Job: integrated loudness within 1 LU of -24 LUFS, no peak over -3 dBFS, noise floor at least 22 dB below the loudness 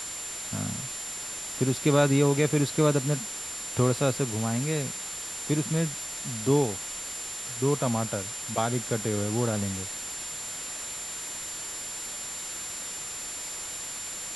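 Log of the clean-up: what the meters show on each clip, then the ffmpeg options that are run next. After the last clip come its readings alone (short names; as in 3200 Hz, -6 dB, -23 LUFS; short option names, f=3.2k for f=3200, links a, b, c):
steady tone 7200 Hz; tone level -36 dBFS; noise floor -37 dBFS; noise floor target -51 dBFS; loudness -28.5 LUFS; peak -8.5 dBFS; loudness target -24.0 LUFS
-> -af "bandreject=f=7.2k:w=30"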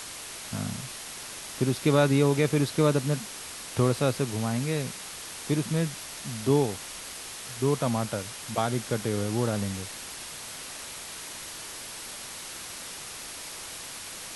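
steady tone none; noise floor -40 dBFS; noise floor target -52 dBFS
-> -af "afftdn=nr=12:nf=-40"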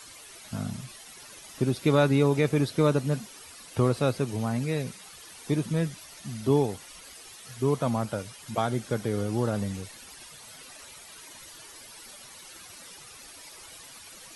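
noise floor -48 dBFS; noise floor target -50 dBFS
-> -af "afftdn=nr=6:nf=-48"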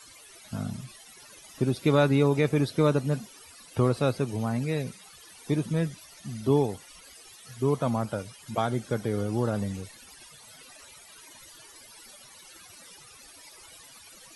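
noise floor -51 dBFS; loudness -27.5 LUFS; peak -9.0 dBFS; loudness target -24.0 LUFS
-> -af "volume=3.5dB"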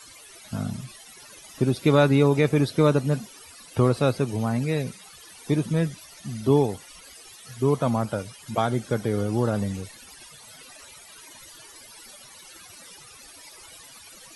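loudness -24.0 LUFS; peak -5.5 dBFS; noise floor -48 dBFS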